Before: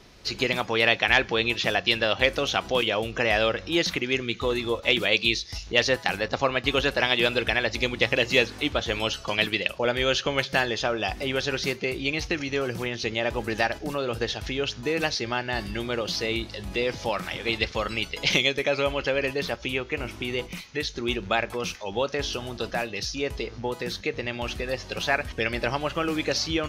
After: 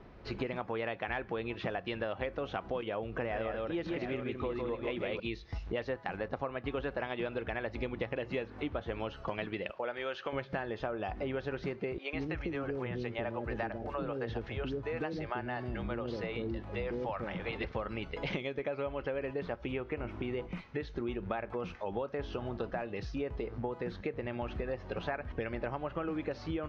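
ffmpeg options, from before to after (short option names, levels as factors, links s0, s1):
-filter_complex "[0:a]asettb=1/sr,asplit=3[s0][s1][s2];[s0]atrim=end=3.054[s3];[s1]atrim=start=3.05:end=5.2,asetpts=PTS-STARTPTS,afade=t=in:d=0.004:c=qsin,afade=t=out:st=2.146:d=0.004:c=qsin,aecho=1:1:157|717:0.631|0.282,atrim=end_sample=94815[s4];[s2]atrim=start=5.196[s5];[s3][s4]acrossfade=d=0.004:c1=hsin:c2=qsin[s6];[s6][s5]acrossfade=d=0.004:c1=qsin:c2=hsin,asettb=1/sr,asplit=3[s7][s8][s9];[s7]atrim=end=9.714[s10];[s8]atrim=start=9.71:end=10.33,asetpts=PTS-STARTPTS,afade=t=in:d=0.004:c=qsin,afade=t=out:st=0.616:d=0.004:c=qsin,highpass=f=950:p=1[s11];[s9]atrim=start=10.326[s12];[s10][s11]acrossfade=d=0.004:c1=hsin:c2=qsin[s13];[s13][s12]acrossfade=d=0.004:c1=qsin:c2=hsin,asettb=1/sr,asplit=3[s14][s15][s16];[s14]atrim=end=11.984[s17];[s15]atrim=start=11.98:end=17.64,asetpts=PTS-STARTPTS,afade=t=in:d=0.004:c=qsin,afade=t=out:st=5.656:d=0.004:c=qsin,acrossover=split=460[s18][s19];[s18]adelay=150[s20];[s20][s19]amix=inputs=2:normalize=0,atrim=end_sample=249606[s21];[s16]atrim=start=17.636[s22];[s17][s21]acrossfade=d=0.004:c1=hsin:c2=qsin[s23];[s23][s22]acrossfade=d=0.004:c1=qsin:c2=hsin,lowpass=1400,acompressor=threshold=0.0224:ratio=6"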